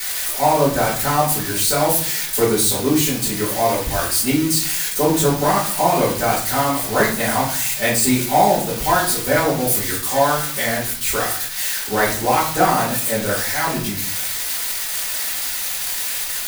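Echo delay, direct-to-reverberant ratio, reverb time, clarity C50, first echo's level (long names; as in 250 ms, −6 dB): no echo audible, −8.5 dB, 0.50 s, 5.5 dB, no echo audible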